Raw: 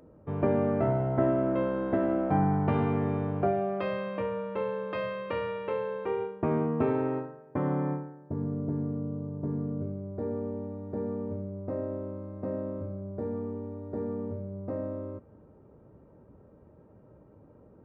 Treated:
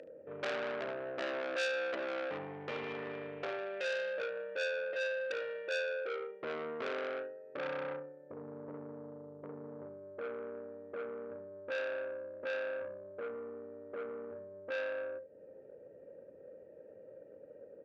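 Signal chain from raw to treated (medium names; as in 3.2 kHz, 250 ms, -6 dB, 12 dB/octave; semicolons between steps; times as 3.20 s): 1.67–4.13 s: FFT filter 500 Hz 0 dB, 1.2 kHz -9 dB, 2.1 kHz +12 dB; upward compressor, threshold -37 dBFS; vowel filter e; early reflections 34 ms -10.5 dB, 74 ms -11 dB; transformer saturation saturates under 3 kHz; trim +3.5 dB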